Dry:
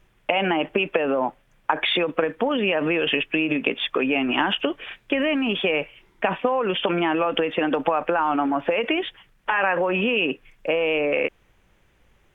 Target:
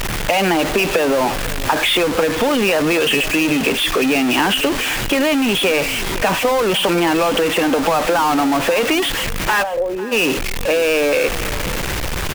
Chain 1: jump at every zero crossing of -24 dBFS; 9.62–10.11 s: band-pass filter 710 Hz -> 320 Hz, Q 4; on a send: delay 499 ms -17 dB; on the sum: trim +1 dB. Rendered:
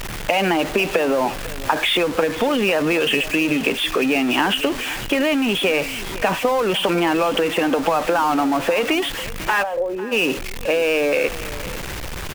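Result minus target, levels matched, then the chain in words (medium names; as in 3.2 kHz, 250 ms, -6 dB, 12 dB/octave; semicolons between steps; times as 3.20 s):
jump at every zero crossing: distortion -5 dB
jump at every zero crossing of -16.5 dBFS; 9.62–10.11 s: band-pass filter 710 Hz -> 320 Hz, Q 4; on a send: delay 499 ms -17 dB; on the sum: trim +1 dB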